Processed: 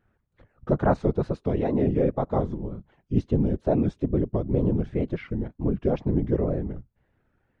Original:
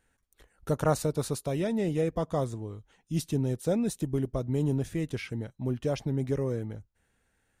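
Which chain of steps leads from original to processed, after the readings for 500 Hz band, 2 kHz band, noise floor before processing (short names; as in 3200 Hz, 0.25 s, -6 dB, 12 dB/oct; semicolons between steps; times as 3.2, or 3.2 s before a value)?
+4.5 dB, 0.0 dB, -74 dBFS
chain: whisperiser; wow and flutter 140 cents; tape spacing loss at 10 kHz 43 dB; gain +6.5 dB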